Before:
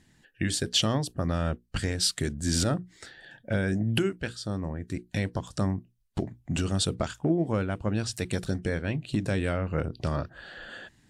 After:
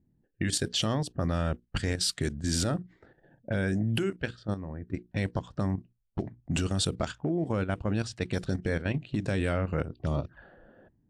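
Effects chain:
0:09.93–0:10.42: flanger swept by the level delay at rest 3.5 ms, full sweep at −25.5 dBFS
output level in coarse steps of 10 dB
low-pass that shuts in the quiet parts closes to 390 Hz, open at −27.5 dBFS
level +2.5 dB

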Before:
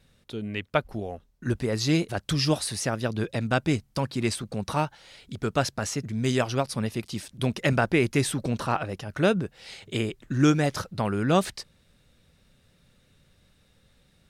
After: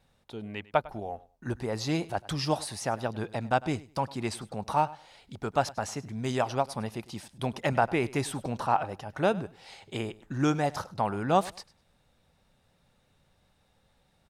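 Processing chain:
parametric band 830 Hz +12.5 dB 0.83 octaves
repeating echo 101 ms, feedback 20%, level −20 dB
level −7 dB

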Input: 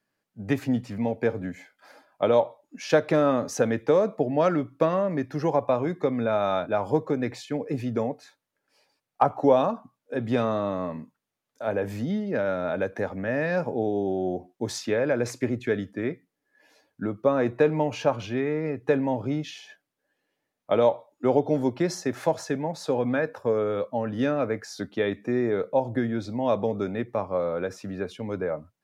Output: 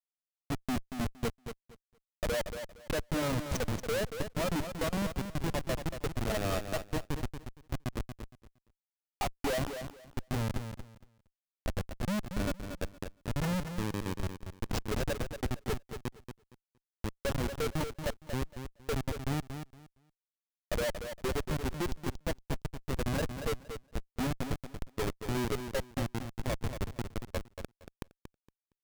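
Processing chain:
spectral dynamics exaggerated over time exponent 2
in parallel at −1.5 dB: downward compressor 20 to 1, threshold −34 dBFS, peak gain reduction 18.5 dB
on the sum: comparator with hysteresis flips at −26 dBFS
repeating echo 232 ms, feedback 20%, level −8.5 dB

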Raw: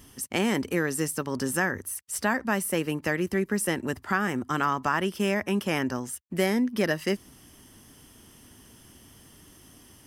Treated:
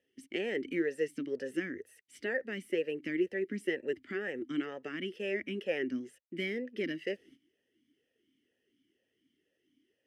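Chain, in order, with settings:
noise gate −48 dBFS, range −14 dB
formant filter swept between two vowels e-i 2.1 Hz
level +3.5 dB

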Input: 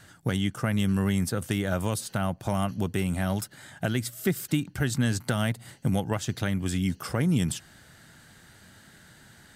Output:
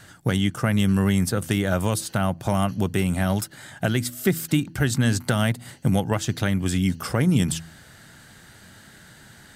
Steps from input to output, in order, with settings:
hum removal 81.84 Hz, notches 4
level +5 dB

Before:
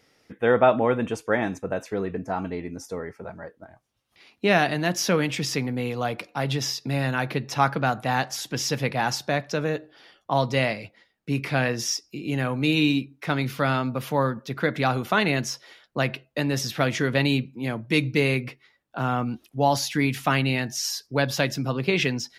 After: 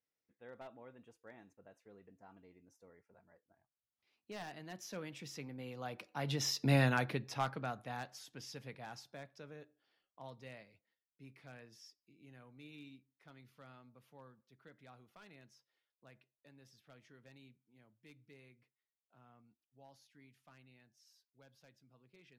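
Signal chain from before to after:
wavefolder on the positive side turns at −13 dBFS
source passing by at 0:06.73, 11 m/s, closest 2 metres
level −3 dB

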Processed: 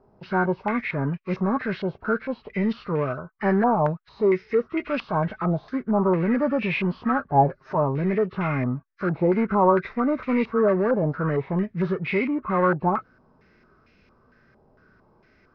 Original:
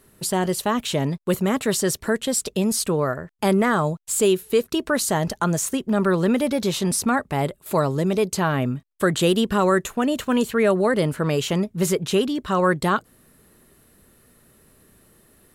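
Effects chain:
hearing-aid frequency compression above 1,100 Hz 1.5 to 1
0:07.34–0:07.75: comb filter 7.5 ms, depth 73%
in parallel at −11.5 dB: wave folding −20.5 dBFS
on the sum: harmonic and percussive parts rebalanced percussive −9 dB
low-pass on a step sequencer 4.4 Hz 810–2,400 Hz
level −2.5 dB

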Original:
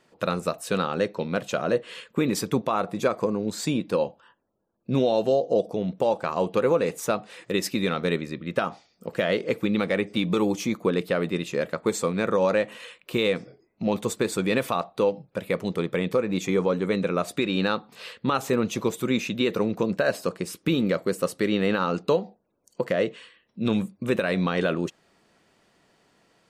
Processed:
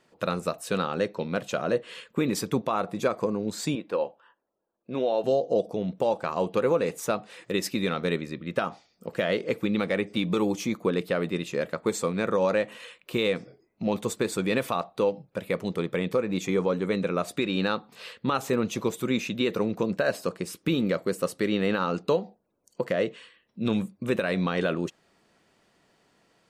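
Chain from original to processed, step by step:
0:03.75–0:05.24: bass and treble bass −14 dB, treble −13 dB
level −2 dB

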